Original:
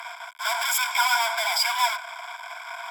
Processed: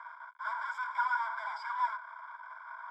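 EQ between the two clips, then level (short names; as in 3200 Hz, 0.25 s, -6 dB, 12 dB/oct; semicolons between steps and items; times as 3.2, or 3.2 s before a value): LPF 1600 Hz 12 dB/oct; air absorption 55 m; fixed phaser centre 710 Hz, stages 6; -4.5 dB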